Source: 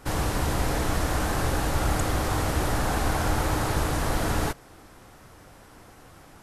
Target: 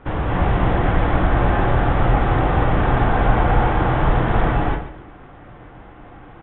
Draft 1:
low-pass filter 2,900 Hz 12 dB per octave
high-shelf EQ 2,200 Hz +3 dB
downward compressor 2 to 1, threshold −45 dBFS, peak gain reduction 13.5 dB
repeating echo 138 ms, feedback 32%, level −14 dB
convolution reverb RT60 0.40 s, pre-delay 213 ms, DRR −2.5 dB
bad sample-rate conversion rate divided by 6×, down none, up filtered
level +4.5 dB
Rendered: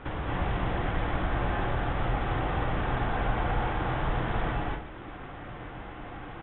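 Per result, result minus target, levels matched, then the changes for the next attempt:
downward compressor: peak gain reduction +13.5 dB; 4,000 Hz band +5.5 dB
remove: downward compressor 2 to 1, threshold −45 dBFS, peak gain reduction 13.5 dB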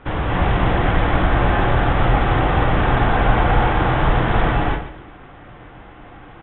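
4,000 Hz band +5.0 dB
change: high-shelf EQ 2,200 Hz −5.5 dB

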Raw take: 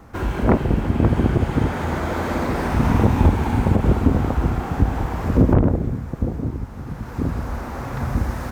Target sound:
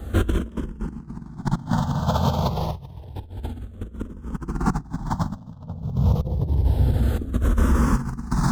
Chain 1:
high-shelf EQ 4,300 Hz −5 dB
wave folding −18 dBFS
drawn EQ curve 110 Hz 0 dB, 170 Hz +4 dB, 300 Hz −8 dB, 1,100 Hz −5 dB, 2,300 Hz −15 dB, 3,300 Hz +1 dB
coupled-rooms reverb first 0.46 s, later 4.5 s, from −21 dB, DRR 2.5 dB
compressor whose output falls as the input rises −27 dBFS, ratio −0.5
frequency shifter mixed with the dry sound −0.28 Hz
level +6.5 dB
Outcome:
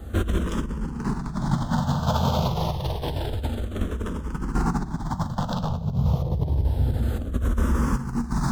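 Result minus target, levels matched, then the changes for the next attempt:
wave folding: distortion +16 dB
change: wave folding −8.5 dBFS

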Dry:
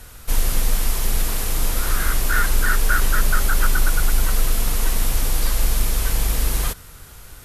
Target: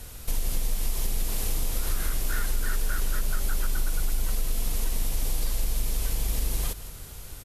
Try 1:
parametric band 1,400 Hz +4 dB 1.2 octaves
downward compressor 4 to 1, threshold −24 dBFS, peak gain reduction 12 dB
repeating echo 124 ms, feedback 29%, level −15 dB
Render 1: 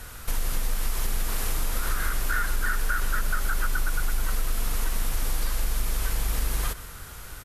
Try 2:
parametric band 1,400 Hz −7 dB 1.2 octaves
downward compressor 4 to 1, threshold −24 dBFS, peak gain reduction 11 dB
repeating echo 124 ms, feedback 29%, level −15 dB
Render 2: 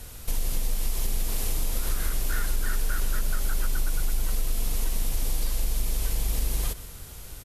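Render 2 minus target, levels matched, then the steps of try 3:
echo 44 ms early
parametric band 1,400 Hz −7 dB 1.2 octaves
downward compressor 4 to 1, threshold −24 dBFS, peak gain reduction 11 dB
repeating echo 168 ms, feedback 29%, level −15 dB

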